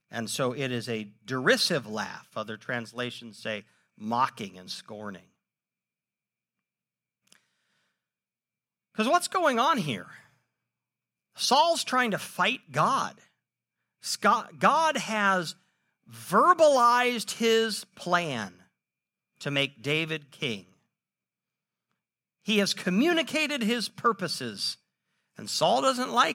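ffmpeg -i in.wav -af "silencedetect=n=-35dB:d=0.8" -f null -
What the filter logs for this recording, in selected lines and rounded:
silence_start: 5.16
silence_end: 8.99 | silence_duration: 3.83
silence_start: 10.02
silence_end: 11.39 | silence_duration: 1.37
silence_start: 13.10
silence_end: 14.04 | silence_duration: 0.94
silence_start: 18.47
silence_end: 19.41 | silence_duration: 0.94
silence_start: 20.58
silence_end: 22.48 | silence_duration: 1.91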